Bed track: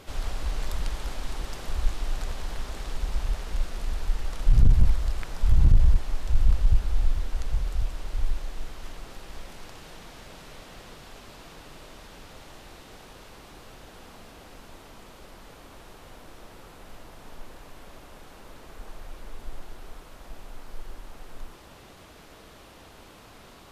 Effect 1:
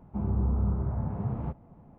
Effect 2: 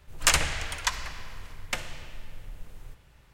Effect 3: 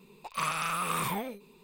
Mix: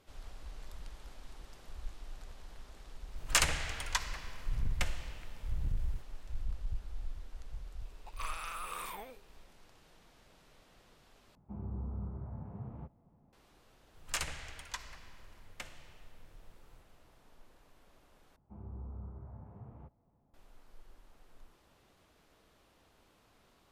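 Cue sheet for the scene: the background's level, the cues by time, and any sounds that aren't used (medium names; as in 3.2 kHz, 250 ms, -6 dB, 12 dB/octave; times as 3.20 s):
bed track -17.5 dB
3.08 s: add 2 -6 dB
7.82 s: add 3 -10.5 dB + high-pass 390 Hz
11.35 s: replace with 1 -13 dB
13.87 s: add 2 -14.5 dB
18.36 s: replace with 1 -17 dB + peaking EQ 180 Hz -5 dB 1.1 oct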